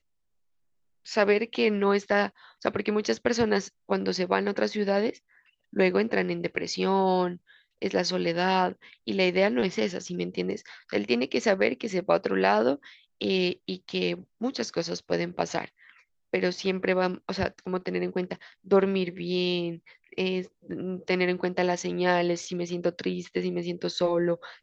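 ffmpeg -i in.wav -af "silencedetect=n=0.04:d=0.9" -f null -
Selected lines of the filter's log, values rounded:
silence_start: 0.00
silence_end: 1.12 | silence_duration: 1.12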